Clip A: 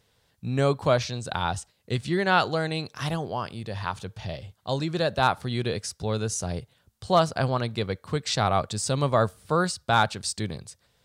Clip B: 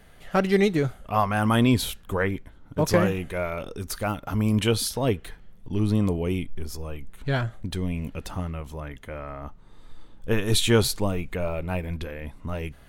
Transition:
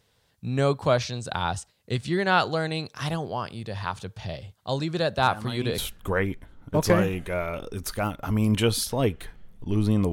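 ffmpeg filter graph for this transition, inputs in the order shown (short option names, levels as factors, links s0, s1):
-filter_complex "[1:a]asplit=2[s0][s1];[0:a]apad=whole_dur=10.12,atrim=end=10.12,atrim=end=5.782[s2];[s1]atrim=start=1.818:end=6.16[s3];[s0]atrim=start=1.25:end=1.82,asetpts=PTS-STARTPTS,volume=0.178,afade=t=in:d=0.004:c=hsin,afade=t=out:st=0.566:d=0.004:c=hsin,adelay=229761S[s4];[s2][s3]acrossfade=d=0.004:c1=hsin:c2=hsin[s5];[s5][s4]amix=inputs=2:normalize=0"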